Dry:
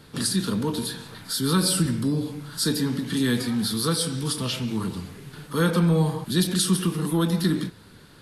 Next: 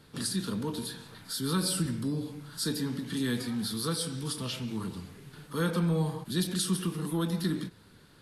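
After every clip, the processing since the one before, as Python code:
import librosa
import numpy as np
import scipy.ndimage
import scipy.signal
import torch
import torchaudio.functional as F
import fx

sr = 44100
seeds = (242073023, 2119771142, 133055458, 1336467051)

y = fx.end_taper(x, sr, db_per_s=540.0)
y = y * 10.0 ** (-7.5 / 20.0)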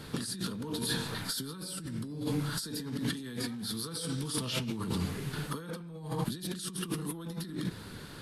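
y = fx.over_compress(x, sr, threshold_db=-41.0, ratio=-1.0)
y = y * 10.0 ** (4.0 / 20.0)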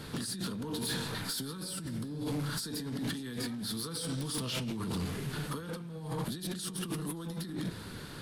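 y = 10.0 ** (-31.0 / 20.0) * np.tanh(x / 10.0 ** (-31.0 / 20.0))
y = fx.echo_feedback(y, sr, ms=574, feedback_pct=58, wet_db=-22.5)
y = y * 10.0 ** (1.5 / 20.0)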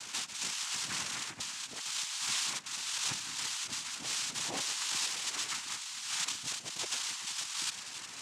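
y = fx.freq_invert(x, sr, carrier_hz=3500)
y = fx.noise_vocoder(y, sr, seeds[0], bands=4)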